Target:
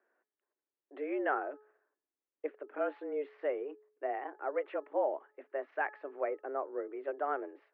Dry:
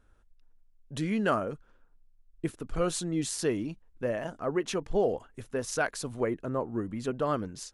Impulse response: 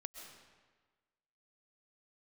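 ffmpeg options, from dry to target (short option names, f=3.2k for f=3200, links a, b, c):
-af "highpass=f=180:t=q:w=0.5412,highpass=f=180:t=q:w=1.307,lowpass=f=2.2k:t=q:w=0.5176,lowpass=f=2.2k:t=q:w=0.7071,lowpass=f=2.2k:t=q:w=1.932,afreqshift=140,bandreject=f=426.3:t=h:w=4,bandreject=f=852.6:t=h:w=4,bandreject=f=1.2789k:t=h:w=4,bandreject=f=1.7052k:t=h:w=4,volume=-5dB"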